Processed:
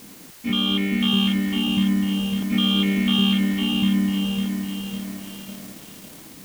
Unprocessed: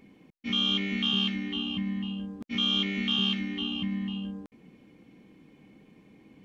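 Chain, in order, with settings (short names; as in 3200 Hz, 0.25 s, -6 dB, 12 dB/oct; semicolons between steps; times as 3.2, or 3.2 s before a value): high shelf 2700 Hz -11.5 dB; added noise white -55 dBFS; lo-fi delay 0.552 s, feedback 55%, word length 8-bit, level -5 dB; gain +9 dB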